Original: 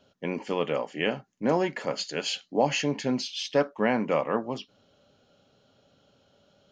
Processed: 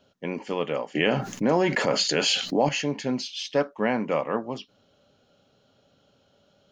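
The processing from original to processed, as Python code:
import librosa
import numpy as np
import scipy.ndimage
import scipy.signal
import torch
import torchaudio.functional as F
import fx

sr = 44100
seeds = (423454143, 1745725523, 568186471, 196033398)

y = fx.env_flatten(x, sr, amount_pct=70, at=(0.95, 2.69))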